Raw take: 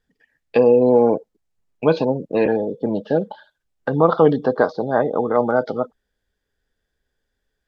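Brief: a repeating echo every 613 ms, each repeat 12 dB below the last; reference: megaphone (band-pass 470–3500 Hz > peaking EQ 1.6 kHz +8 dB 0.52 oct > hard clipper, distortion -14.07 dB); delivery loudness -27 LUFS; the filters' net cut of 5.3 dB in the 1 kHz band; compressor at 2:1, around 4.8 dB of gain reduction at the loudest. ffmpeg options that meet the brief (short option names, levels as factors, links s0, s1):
-af "equalizer=f=1000:t=o:g=-8.5,acompressor=threshold=0.112:ratio=2,highpass=470,lowpass=3500,equalizer=f=1600:t=o:w=0.52:g=8,aecho=1:1:613|1226|1839:0.251|0.0628|0.0157,asoftclip=type=hard:threshold=0.112,volume=1.19"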